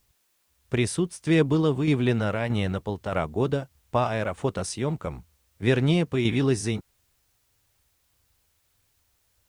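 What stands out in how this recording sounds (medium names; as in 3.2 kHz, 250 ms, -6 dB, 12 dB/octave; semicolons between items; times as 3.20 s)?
tremolo saw down 1.6 Hz, depth 50%; a quantiser's noise floor 12-bit, dither triangular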